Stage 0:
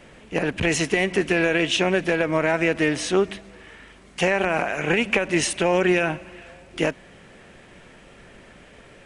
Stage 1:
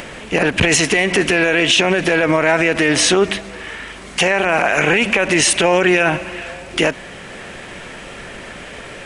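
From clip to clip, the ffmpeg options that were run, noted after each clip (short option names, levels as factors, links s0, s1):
-af "lowshelf=f=490:g=-6,acompressor=mode=upward:threshold=0.00562:ratio=2.5,alimiter=level_in=8.91:limit=0.891:release=50:level=0:latency=1,volume=0.708"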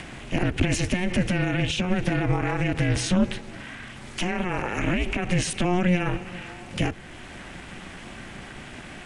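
-filter_complex "[0:a]aeval=exprs='val(0)*sin(2*PI*180*n/s)':c=same,equalizer=f=450:w=1.8:g=-7.5,acrossover=split=430[s0][s1];[s1]acompressor=threshold=0.00251:ratio=1.5[s2];[s0][s2]amix=inputs=2:normalize=0,volume=1.12"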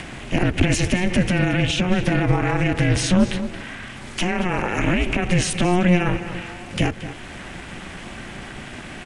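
-filter_complex "[0:a]asplit=2[s0][s1];[s1]adelay=227.4,volume=0.251,highshelf=f=4000:g=-5.12[s2];[s0][s2]amix=inputs=2:normalize=0,volume=1.68"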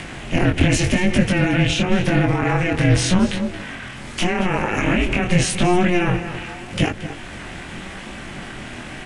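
-af "flanger=delay=19:depth=6.2:speed=0.86,volume=1.78"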